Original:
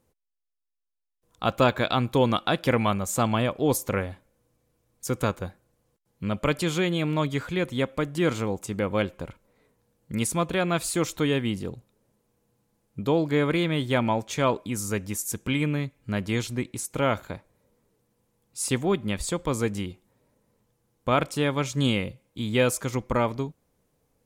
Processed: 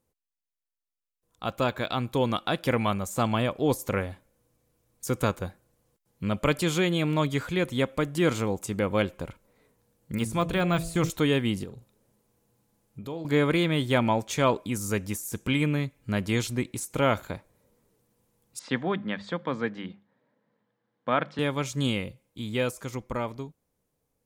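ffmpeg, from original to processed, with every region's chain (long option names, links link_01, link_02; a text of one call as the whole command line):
ffmpeg -i in.wav -filter_complex "[0:a]asettb=1/sr,asplit=3[link_01][link_02][link_03];[link_01]atrim=end=10.144[link_04];[link_02]atrim=start=10.14:end=11.1,asetpts=PTS-STARTPTS,afade=type=in:duration=0.004:curve=qsin,afade=type=out:start_time=0.956:duration=0.004:curve=qsin,deesser=0.9,bandreject=frequency=55.44:width_type=h:width=4,bandreject=frequency=110.88:width_type=h:width=4,bandreject=frequency=166.32:width_type=h:width=4,bandreject=frequency=221.76:width_type=h:width=4,bandreject=frequency=277.2:width_type=h:width=4,bandreject=frequency=332.64:width_type=h:width=4,bandreject=frequency=388.08:width_type=h:width=4,bandreject=frequency=443.52:width_type=h:width=4,bandreject=frequency=498.96:width_type=h:width=4,bandreject=frequency=554.4:width_type=h:width=4,bandreject=frequency=609.84:width_type=h:width=4,bandreject=frequency=665.28:width_type=h:width=4,bandreject=frequency=720.72:width_type=h:width=4,asubboost=boost=10.5:cutoff=170[link_05];[link_03]atrim=start=11.096[link_06];[link_04][link_05]acrossfade=duration=0.004:curve1=hsin:curve2=qsin[link_07];[link_07][link_06]acrossfade=duration=0.004:curve1=qsin:curve2=hsin,asettb=1/sr,asplit=3[link_08][link_09][link_10];[link_08]atrim=end=11.644[link_11];[link_09]atrim=start=11.64:end=13.25,asetpts=PTS-STARTPTS,afade=type=in:duration=0.004:curve=qsin,afade=type=out:start_time=1.606:duration=0.004:curve=qsin,asplit=2[link_12][link_13];[link_13]adelay=43,volume=-13dB[link_14];[link_12][link_14]amix=inputs=2:normalize=0,atrim=end_sample=71001,acompressor=threshold=-43dB:ratio=2:attack=3.2:release=140:knee=1:detection=peak[link_15];[link_10]atrim=start=13.246[link_16];[link_11][link_15]acrossfade=duration=0.004:curve1=hsin:curve2=qsin[link_17];[link_17][link_16]acrossfade=duration=0.004:curve1=qsin:curve2=hsin,asettb=1/sr,asplit=3[link_18][link_19][link_20];[link_18]atrim=end=18.594[link_21];[link_19]atrim=start=18.59:end=21.39,asetpts=PTS-STARTPTS,afade=type=in:duration=0.004:curve=qsin,afade=type=out:start_time=2.796:duration=0.004:curve=qsin,highpass=frequency=150:width=0.5412,highpass=frequency=150:width=1.3066,equalizer=frequency=370:width_type=q:width=4:gain=-7,equalizer=frequency=1700:width_type=q:width=4:gain=7,equalizer=frequency=2600:width_type=q:width=4:gain=-6,lowpass=frequency=3600:width=0.5412,lowpass=frequency=3600:width=1.3066,bandreject=frequency=50:width_type=h:width=6,bandreject=frequency=100:width_type=h:width=6,bandreject=frequency=150:width_type=h:width=6,bandreject=frequency=200:width_type=h:width=6[link_22];[link_20]atrim=start=21.386[link_23];[link_21][link_22]acrossfade=duration=0.004:curve1=hsin:curve2=qsin[link_24];[link_24][link_23]acrossfade=duration=0.004:curve1=qsin:curve2=hsin,deesser=0.6,highshelf=frequency=7200:gain=4.5,dynaudnorm=framelen=140:gausssize=31:maxgain=9dB,volume=-7.5dB" out.wav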